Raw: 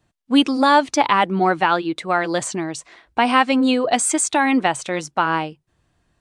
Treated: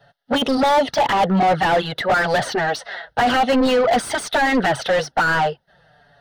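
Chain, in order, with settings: envelope flanger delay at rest 7.2 ms, full sweep at -12 dBFS; fixed phaser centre 1600 Hz, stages 8; overdrive pedal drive 32 dB, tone 1200 Hz, clips at -9 dBFS; gain +1.5 dB

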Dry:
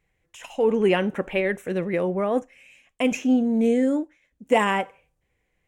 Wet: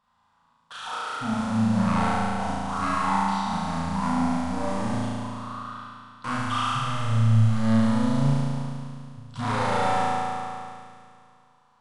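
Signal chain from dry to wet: overdrive pedal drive 24 dB, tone 5900 Hz, clips at -7.5 dBFS; in parallel at -8.5 dB: wrapped overs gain 24 dB; on the sum: fixed phaser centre 300 Hz, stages 4; resonator 58 Hz, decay 1.2 s, harmonics all, mix 100%; dynamic EQ 1700 Hz, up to +5 dB, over -50 dBFS, Q 1.2; wide varispeed 0.481×; gain +7 dB

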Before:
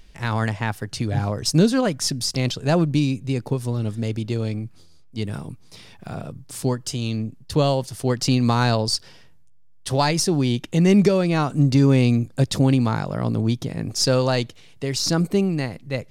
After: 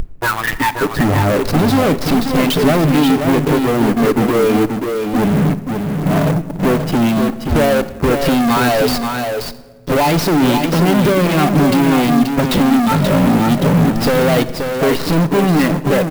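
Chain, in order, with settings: low-pass opened by the level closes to 480 Hz, open at -13 dBFS; in parallel at +2.5 dB: limiter -13.5 dBFS, peak gain reduction 7 dB; on the sum: bell 130 Hz -15 dB 0.31 oct; compressor 12:1, threshold -23 dBFS, peak gain reduction 15.5 dB; spectral noise reduction 23 dB; fuzz box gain 46 dB, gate -45 dBFS; air absorption 140 m; echo 0.531 s -6 dB; shoebox room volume 1200 m³, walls mixed, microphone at 0.37 m; clock jitter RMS 0.025 ms; gain +1.5 dB

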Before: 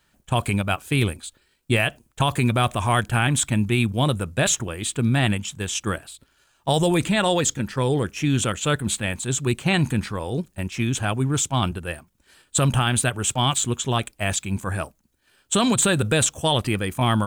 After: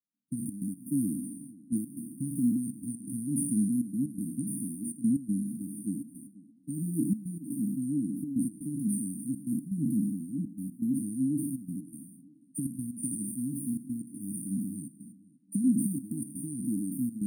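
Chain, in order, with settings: spectral trails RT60 1.22 s; gate -36 dBFS, range -26 dB; HPF 220 Hz 24 dB/oct; high shelf 5700 Hz -6 dB; limiter -9.5 dBFS, peak gain reduction 6.5 dB; step gate "xxxx.x.xx" 122 bpm -12 dB; brick-wall FIR band-stop 310–8900 Hz; tape echo 0.484 s, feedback 39%, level -19 dB, low-pass 2800 Hz

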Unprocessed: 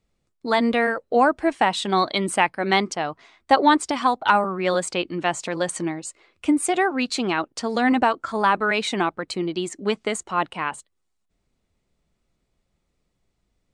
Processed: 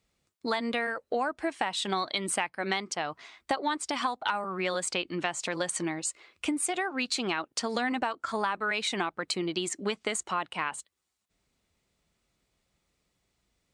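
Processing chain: HPF 41 Hz; tilt shelf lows -4 dB; compressor 6:1, threshold -27 dBFS, peak gain reduction 15.5 dB

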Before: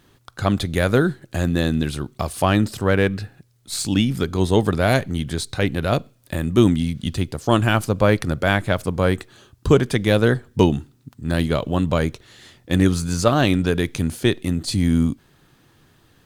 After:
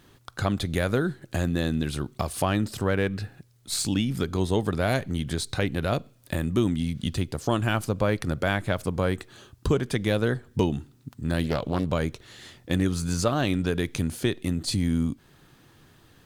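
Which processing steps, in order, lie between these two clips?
compressor 2:1, threshold -26 dBFS, peak gain reduction 10 dB; 11.44–11.92 Doppler distortion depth 0.37 ms

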